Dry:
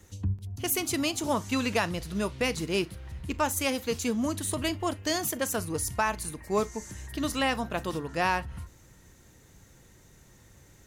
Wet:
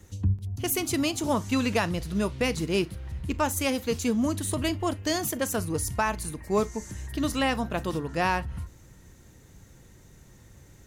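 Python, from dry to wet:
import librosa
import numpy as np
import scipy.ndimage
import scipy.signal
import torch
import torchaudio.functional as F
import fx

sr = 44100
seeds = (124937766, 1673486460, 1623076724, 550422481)

y = fx.low_shelf(x, sr, hz=380.0, db=5.0)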